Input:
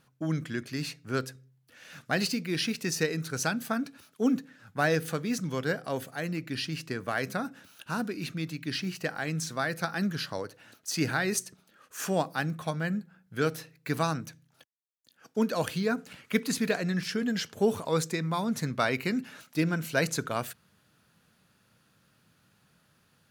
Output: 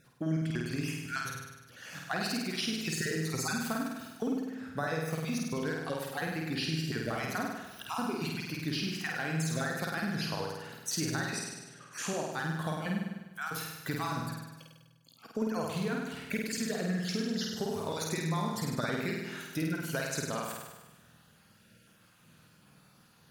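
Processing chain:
time-frequency cells dropped at random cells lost 30%
0:12.99–0:13.55: parametric band 3,400 Hz −13.5 dB 2.4 octaves
on a send at −23.5 dB: convolution reverb RT60 1.1 s, pre-delay 3 ms
on the sum: downward compressor 6 to 1, threshold −36 dBFS, peak gain reduction 15.5 dB
0:11.30–0:12.32: low-pass filter 7,000 Hz 12 dB per octave
flutter between parallel walls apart 8.6 metres, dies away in 1.1 s
level +3 dB

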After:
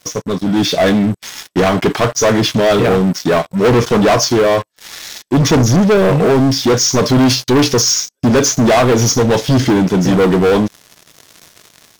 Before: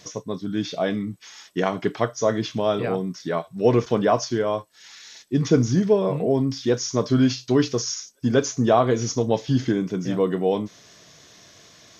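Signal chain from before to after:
leveller curve on the samples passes 5
automatic gain control gain up to 6 dB
level −4.5 dB

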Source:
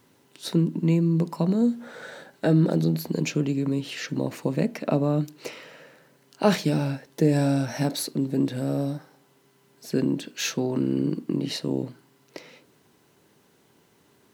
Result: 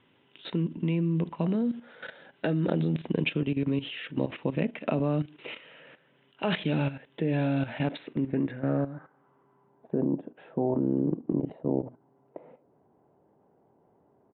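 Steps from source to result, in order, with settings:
downsampling to 8,000 Hz
low-pass filter sweep 3,100 Hz → 740 Hz, 0:07.77–0:10.05
output level in coarse steps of 13 dB

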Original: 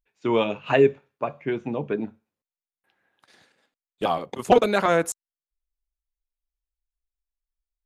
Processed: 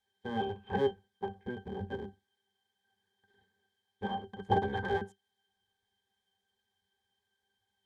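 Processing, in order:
sub-harmonics by changed cycles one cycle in 3, inverted
background noise blue −51 dBFS
resonances in every octave G, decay 0.13 s

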